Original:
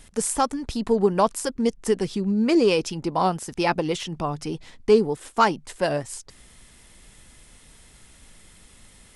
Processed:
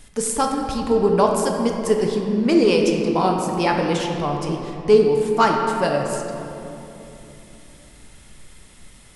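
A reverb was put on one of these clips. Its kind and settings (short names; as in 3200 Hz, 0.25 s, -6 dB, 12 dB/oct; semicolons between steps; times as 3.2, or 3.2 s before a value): shoebox room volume 150 m³, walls hard, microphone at 0.37 m; gain +1 dB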